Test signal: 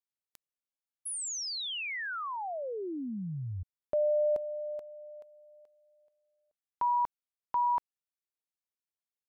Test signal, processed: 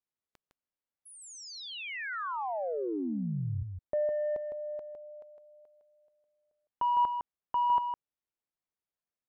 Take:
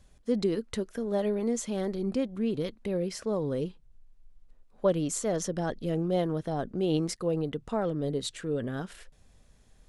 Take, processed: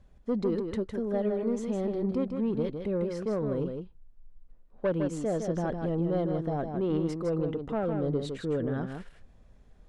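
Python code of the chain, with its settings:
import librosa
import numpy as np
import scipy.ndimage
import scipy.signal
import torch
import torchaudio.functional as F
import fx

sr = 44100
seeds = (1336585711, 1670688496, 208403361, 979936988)

p1 = fx.lowpass(x, sr, hz=3400.0, slope=6)
p2 = fx.high_shelf(p1, sr, hz=2100.0, db=-9.5)
p3 = fx.rider(p2, sr, range_db=3, speed_s=0.5)
p4 = p2 + F.gain(torch.from_numpy(p3), 2.5).numpy()
p5 = 10.0 ** (-15.0 / 20.0) * np.tanh(p4 / 10.0 ** (-15.0 / 20.0))
p6 = p5 + 10.0 ** (-6.0 / 20.0) * np.pad(p5, (int(158 * sr / 1000.0), 0))[:len(p5)]
y = F.gain(torch.from_numpy(p6), -6.0).numpy()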